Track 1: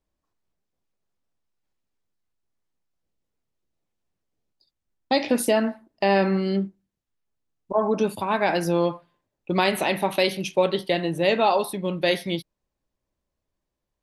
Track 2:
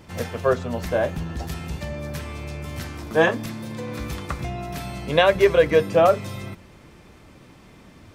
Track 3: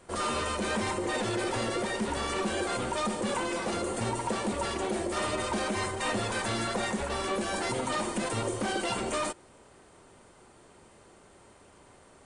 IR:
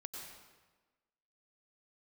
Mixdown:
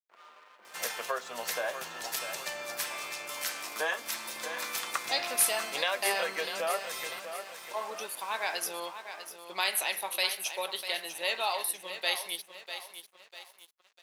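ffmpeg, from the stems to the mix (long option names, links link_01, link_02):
-filter_complex "[0:a]aemphasis=mode=production:type=75kf,volume=-8dB,asplit=2[link_01][link_02];[link_02]volume=-10dB[link_03];[1:a]highshelf=frequency=4900:gain=9.5,acompressor=threshold=-24dB:ratio=6,adelay=650,volume=1dB,asplit=2[link_04][link_05];[link_05]volume=-9dB[link_06];[2:a]lowpass=1700,volume=-15.5dB[link_07];[link_03][link_06]amix=inputs=2:normalize=0,aecho=0:1:647|1294|1941|2588|3235|3882:1|0.45|0.202|0.0911|0.041|0.0185[link_08];[link_01][link_04][link_07][link_08]amix=inputs=4:normalize=0,aeval=exprs='sgn(val(0))*max(abs(val(0))-0.00251,0)':channel_layout=same,highpass=880"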